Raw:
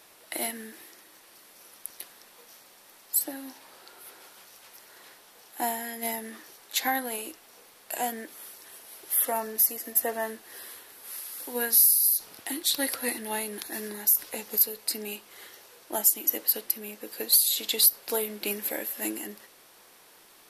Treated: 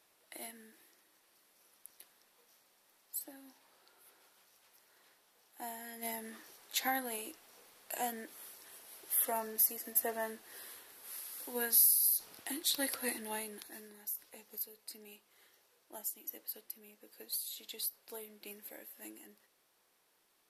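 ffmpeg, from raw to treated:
ffmpeg -i in.wav -af "volume=-7dB,afade=type=in:start_time=5.64:duration=0.65:silence=0.375837,afade=type=out:start_time=13.18:duration=0.7:silence=0.266073" out.wav

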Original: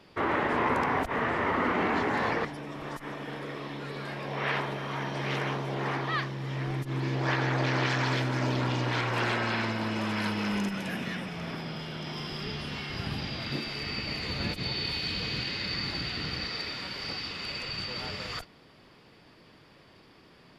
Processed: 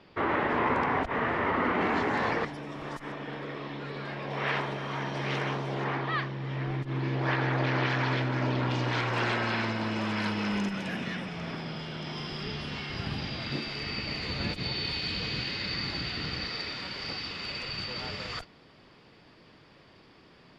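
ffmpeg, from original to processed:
ffmpeg -i in.wav -af "asetnsamples=nb_out_samples=441:pad=0,asendcmd='1.81 lowpass f 8300;3.12 lowpass f 4600;4.3 lowpass f 7700;5.84 lowpass f 3700;8.71 lowpass f 6900',lowpass=4300" out.wav

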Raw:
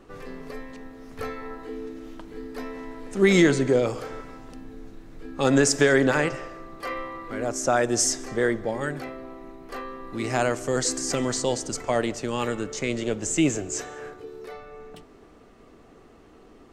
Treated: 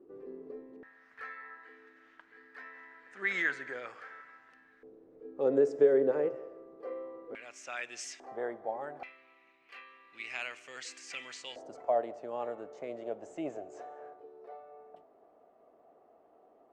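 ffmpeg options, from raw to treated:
ffmpeg -i in.wav -af "asetnsamples=nb_out_samples=441:pad=0,asendcmd='0.83 bandpass f 1700;4.83 bandpass f 460;7.35 bandpass f 2500;8.2 bandpass f 750;9.03 bandpass f 2500;11.56 bandpass f 670',bandpass=frequency=370:width_type=q:width=4.3:csg=0" out.wav

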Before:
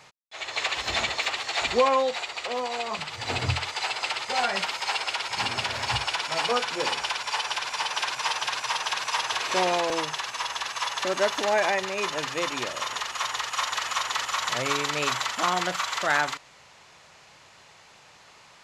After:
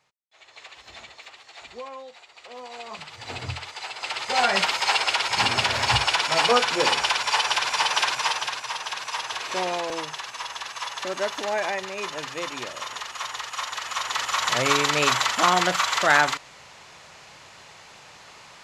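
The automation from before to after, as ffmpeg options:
ffmpeg -i in.wav -af "volume=14.5dB,afade=type=in:start_time=2.28:duration=0.7:silence=0.281838,afade=type=in:start_time=3.95:duration=0.61:silence=0.251189,afade=type=out:start_time=7.97:duration=0.65:silence=0.354813,afade=type=in:start_time=13.84:duration=0.85:silence=0.375837" out.wav

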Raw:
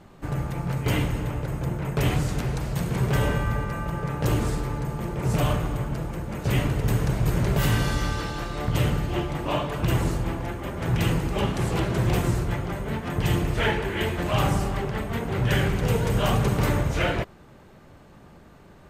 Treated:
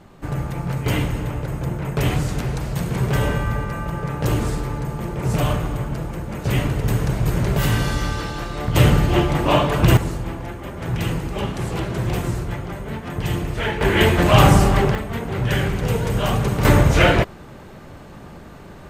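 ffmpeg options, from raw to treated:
ffmpeg -i in.wav -af "asetnsamples=nb_out_samples=441:pad=0,asendcmd='8.76 volume volume 9.5dB;9.97 volume volume 0dB;13.81 volume volume 11dB;14.95 volume volume 2dB;16.65 volume volume 10dB',volume=3dB" out.wav

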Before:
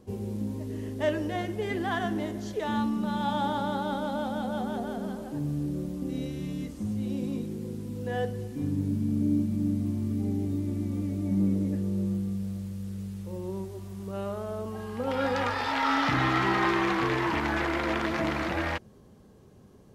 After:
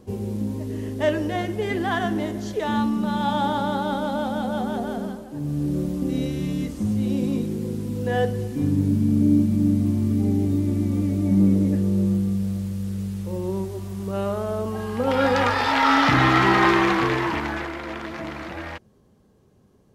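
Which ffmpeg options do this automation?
ffmpeg -i in.wav -af "volume=15.5dB,afade=type=out:start_time=4.99:duration=0.28:silence=0.421697,afade=type=in:start_time=5.27:duration=0.5:silence=0.316228,afade=type=out:start_time=16.7:duration=1.05:silence=0.251189" out.wav

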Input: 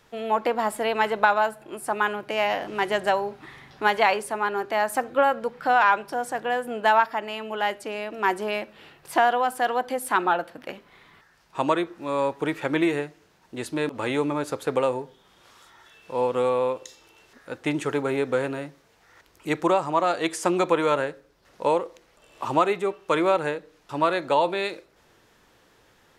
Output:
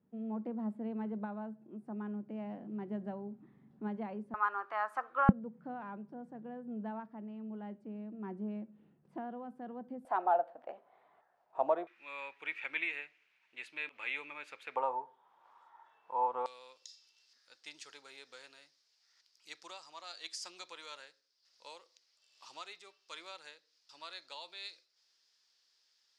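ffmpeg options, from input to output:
ffmpeg -i in.wav -af "asetnsamples=nb_out_samples=441:pad=0,asendcmd='4.34 bandpass f 1200;5.29 bandpass f 200;10.05 bandpass f 700;11.87 bandpass f 2400;14.76 bandpass f 910;16.46 bandpass f 4900',bandpass=frequency=210:width_type=q:width=5:csg=0" out.wav

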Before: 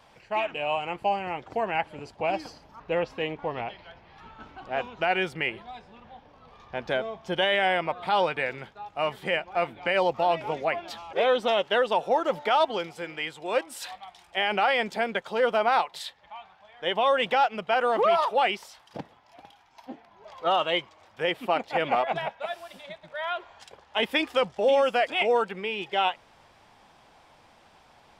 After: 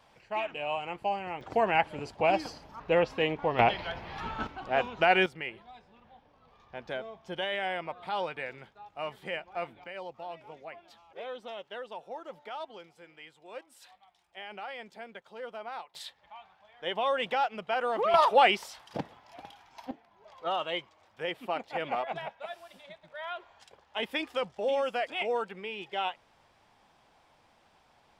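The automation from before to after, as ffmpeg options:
ffmpeg -i in.wav -af "asetnsamples=nb_out_samples=441:pad=0,asendcmd='1.41 volume volume 2dB;3.59 volume volume 11dB;4.47 volume volume 2dB;5.26 volume volume -9dB;9.84 volume volume -17.5dB;15.95 volume volume -6dB;18.14 volume volume 2.5dB;19.91 volume volume -7.5dB',volume=-5dB" out.wav

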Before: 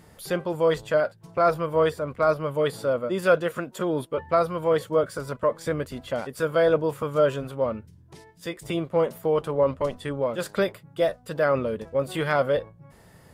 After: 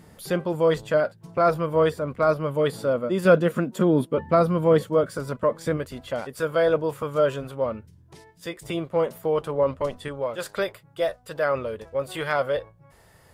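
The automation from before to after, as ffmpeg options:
ffmpeg -i in.wav -af "asetnsamples=nb_out_samples=441:pad=0,asendcmd='3.25 equalizer g 12.5;4.83 equalizer g 5;5.77 equalizer g -2;10.08 equalizer g -9',equalizer=frequency=210:width_type=o:width=1.5:gain=4.5" out.wav

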